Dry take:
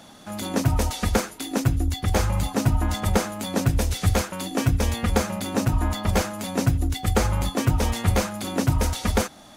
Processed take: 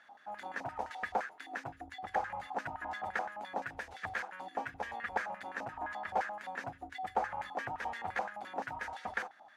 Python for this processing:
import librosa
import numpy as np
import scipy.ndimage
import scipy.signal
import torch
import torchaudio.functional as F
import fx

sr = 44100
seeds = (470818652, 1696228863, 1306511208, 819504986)

y = fx.filter_lfo_bandpass(x, sr, shape='square', hz=5.8, low_hz=800.0, high_hz=1700.0, q=6.5)
y = F.gain(torch.from_numpy(y), 1.5).numpy()